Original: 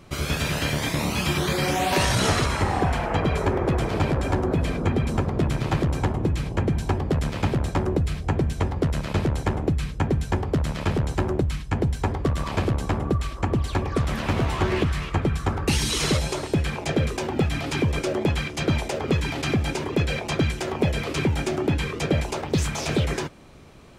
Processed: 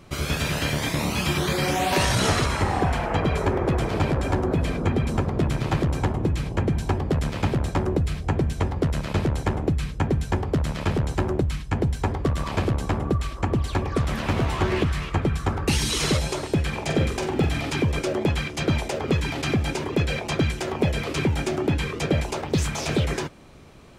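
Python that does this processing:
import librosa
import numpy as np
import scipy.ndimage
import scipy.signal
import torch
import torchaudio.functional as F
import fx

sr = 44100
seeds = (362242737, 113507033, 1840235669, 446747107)

y = fx.room_flutter(x, sr, wall_m=7.8, rt60_s=0.34, at=(16.72, 17.69), fade=0.02)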